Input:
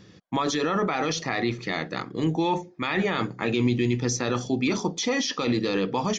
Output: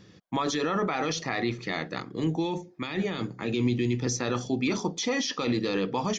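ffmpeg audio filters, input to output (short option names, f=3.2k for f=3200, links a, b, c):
-filter_complex "[0:a]asettb=1/sr,asplit=3[a][b][c];[a]atrim=end=1.984[d];[b]atrim=start=1.98:end=4.07,asetpts=PTS-STARTPTS,afade=t=in:d=0.004:c=qsin,afade=t=out:st=2.086:d=0.004:c=qsin,acrossover=split=490|3000[e][f][g];[f]acompressor=threshold=-35dB:ratio=6[h];[e][h][g]amix=inputs=3:normalize=0[i];[c]atrim=start=4.066[j];[d][i]acrossfade=d=0.004:c1=hsin:c2=qsin[k];[k][j]acrossfade=d=0.004:c1=qsin:c2=hsin,volume=-2.5dB"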